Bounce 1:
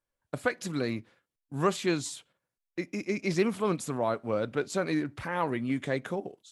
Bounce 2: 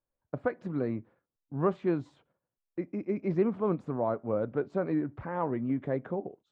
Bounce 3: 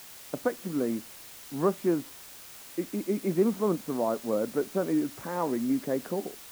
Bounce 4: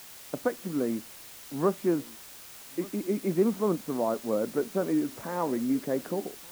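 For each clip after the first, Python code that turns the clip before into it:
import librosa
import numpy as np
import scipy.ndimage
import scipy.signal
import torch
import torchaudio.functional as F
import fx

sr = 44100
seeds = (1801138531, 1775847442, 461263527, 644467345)

y1 = scipy.signal.sosfilt(scipy.signal.butter(2, 1000.0, 'lowpass', fs=sr, output='sos'), x)
y2 = fx.env_lowpass_down(y1, sr, base_hz=2100.0, full_db=-24.5)
y2 = fx.low_shelf_res(y2, sr, hz=150.0, db=-11.0, q=1.5)
y2 = fx.quant_dither(y2, sr, seeds[0], bits=8, dither='triangular')
y2 = y2 * 10.0 ** (1.0 / 20.0)
y3 = y2 + 10.0 ** (-22.0 / 20.0) * np.pad(y2, (int(1177 * sr / 1000.0), 0))[:len(y2)]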